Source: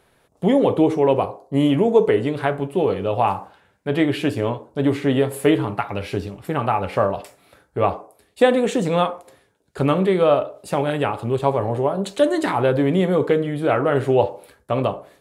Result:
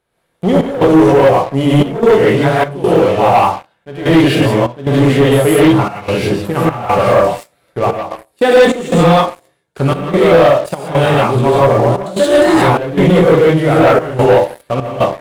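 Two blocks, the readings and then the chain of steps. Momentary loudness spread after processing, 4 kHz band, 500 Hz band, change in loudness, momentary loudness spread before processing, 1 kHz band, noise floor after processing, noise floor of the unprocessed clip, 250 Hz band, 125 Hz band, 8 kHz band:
9 LU, +10.5 dB, +9.0 dB, +9.0 dB, 9 LU, +9.5 dB, -62 dBFS, -61 dBFS, +8.5 dB, +10.5 dB, +11.5 dB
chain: non-linear reverb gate 0.2 s rising, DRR -8 dB; sample leveller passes 3; step gate "xxx.xxxxx." 74 bpm -12 dB; gain -7 dB

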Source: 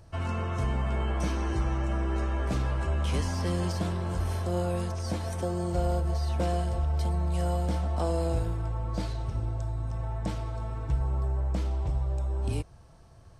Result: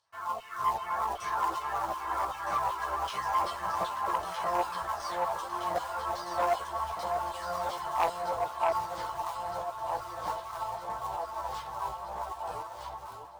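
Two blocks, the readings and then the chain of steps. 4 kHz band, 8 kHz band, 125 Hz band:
0.0 dB, -1.5 dB, -24.0 dB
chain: high shelf 7100 Hz +9.5 dB; LFO band-pass saw down 2.6 Hz 720–3400 Hz; fifteen-band EQ 100 Hz -3 dB, 250 Hz -10 dB, 1000 Hz +10 dB, 2500 Hz -11 dB; reverb removal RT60 1.6 s; in parallel at -5 dB: companded quantiser 4-bit; on the sum: echo with dull and thin repeats by turns 0.632 s, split 1100 Hz, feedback 80%, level -3 dB; AGC gain up to 7.5 dB; chorus voices 6, 0.49 Hz, delay 13 ms, depth 4.4 ms; core saturation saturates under 1300 Hz

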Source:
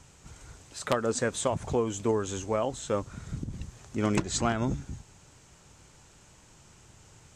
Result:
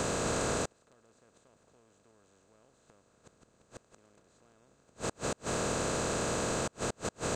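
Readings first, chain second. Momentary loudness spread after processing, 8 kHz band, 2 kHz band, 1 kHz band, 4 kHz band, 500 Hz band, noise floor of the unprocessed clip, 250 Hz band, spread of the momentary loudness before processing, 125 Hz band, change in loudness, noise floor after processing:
6 LU, 0.0 dB, -0.5 dB, -3.5 dB, -1.0 dB, -5.5 dB, -57 dBFS, -7.0 dB, 16 LU, -6.5 dB, -3.0 dB, -69 dBFS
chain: per-bin compression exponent 0.2; flipped gate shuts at -13 dBFS, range -37 dB; gain -7.5 dB

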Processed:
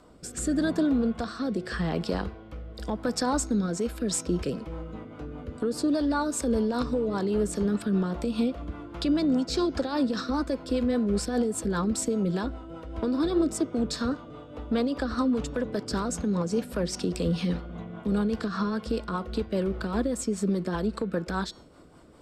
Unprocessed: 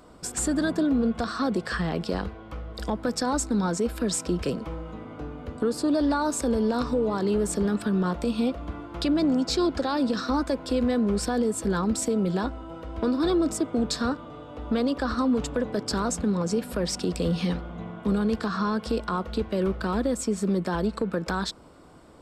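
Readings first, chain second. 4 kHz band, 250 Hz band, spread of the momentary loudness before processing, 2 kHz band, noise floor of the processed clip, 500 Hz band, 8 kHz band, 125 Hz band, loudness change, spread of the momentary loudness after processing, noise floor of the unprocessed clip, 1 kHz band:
-3.0 dB, -1.5 dB, 10 LU, -3.0 dB, -46 dBFS, -2.0 dB, -2.5 dB, -1.0 dB, -1.5 dB, 10 LU, -43 dBFS, -3.5 dB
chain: de-hum 365.4 Hz, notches 18; rotary speaker horn 0.85 Hz, later 5 Hz, at 3.4

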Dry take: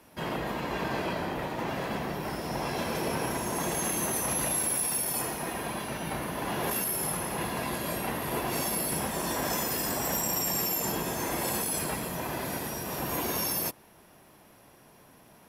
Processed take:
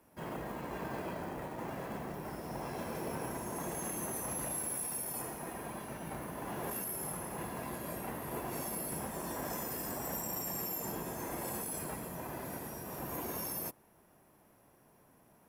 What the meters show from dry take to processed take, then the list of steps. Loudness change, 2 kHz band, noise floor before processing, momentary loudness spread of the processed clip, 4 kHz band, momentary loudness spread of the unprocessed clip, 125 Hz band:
-9.0 dB, -11.5 dB, -57 dBFS, 6 LU, -15.0 dB, 7 LU, -7.5 dB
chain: short-mantissa float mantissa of 2-bit; bell 3800 Hz -9 dB 1.7 oct; gain -7.5 dB

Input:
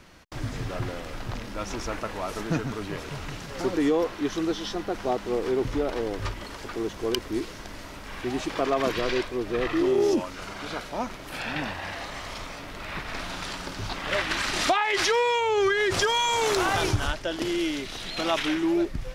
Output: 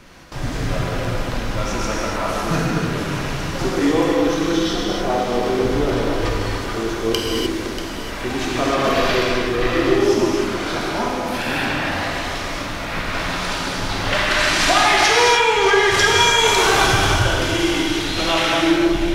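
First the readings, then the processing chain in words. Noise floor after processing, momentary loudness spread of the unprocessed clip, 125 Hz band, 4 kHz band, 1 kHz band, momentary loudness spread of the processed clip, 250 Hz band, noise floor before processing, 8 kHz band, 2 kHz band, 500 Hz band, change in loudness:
-27 dBFS, 14 LU, +10.0 dB, +11.0 dB, +9.5 dB, 11 LU, +8.0 dB, -41 dBFS, +11.0 dB, +11.0 dB, +7.0 dB, +9.0 dB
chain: non-linear reverb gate 0.33 s flat, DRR -4 dB; dynamic EQ 420 Hz, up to -5 dB, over -30 dBFS, Q 0.95; echo with dull and thin repeats by turns 0.319 s, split 1600 Hz, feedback 71%, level -8.5 dB; gain +5 dB

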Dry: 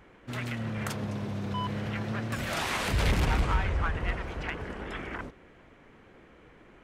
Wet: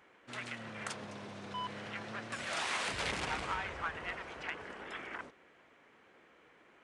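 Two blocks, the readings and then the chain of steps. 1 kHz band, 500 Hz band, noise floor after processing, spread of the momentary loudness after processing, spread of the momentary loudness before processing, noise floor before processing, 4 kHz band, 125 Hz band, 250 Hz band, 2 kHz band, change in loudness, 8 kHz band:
-5.0 dB, -8.0 dB, -64 dBFS, 10 LU, 11 LU, -56 dBFS, -3.5 dB, -19.5 dB, -13.5 dB, -4.0 dB, -8.0 dB, -4.0 dB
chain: HPF 670 Hz 6 dB/oct; downsampling 22050 Hz; gain -3.5 dB

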